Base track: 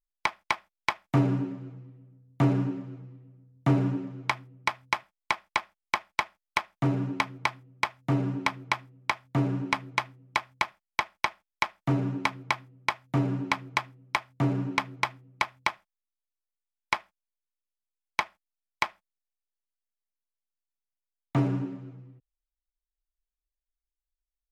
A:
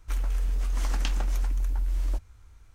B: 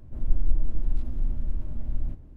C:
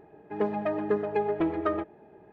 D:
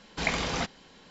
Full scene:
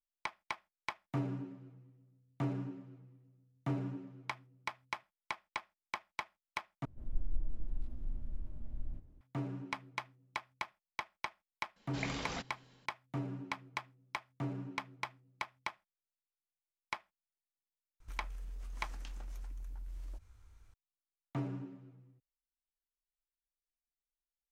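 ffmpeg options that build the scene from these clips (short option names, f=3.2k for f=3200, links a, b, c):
-filter_complex "[0:a]volume=-13dB[a];[4:a]dynaudnorm=f=160:g=3:m=3.5dB[b];[1:a]acompressor=threshold=-34dB:ratio=6:attack=3.2:release=140:knee=1:detection=peak[c];[a]asplit=2[d][e];[d]atrim=end=6.854[f];[2:a]atrim=end=2.36,asetpts=PTS-STARTPTS,volume=-13dB[g];[e]atrim=start=9.206[h];[b]atrim=end=1.1,asetpts=PTS-STARTPTS,volume=-14.5dB,afade=t=in:d=0.004:c=hsin,afade=t=out:st=1.096:d=0.004:c=hsin,adelay=11760[i];[c]atrim=end=2.74,asetpts=PTS-STARTPTS,volume=-8dB,afade=t=in:d=0.004:c=hsin,afade=t=out:st=2.736:d=0.004:c=hsin,adelay=18000[j];[f][g]acrossfade=d=0.004:c1=hsin:c2=hsin[k];[k][h]acrossfade=d=0.004:c1=hsin:c2=hsin[l];[l][i][j]amix=inputs=3:normalize=0"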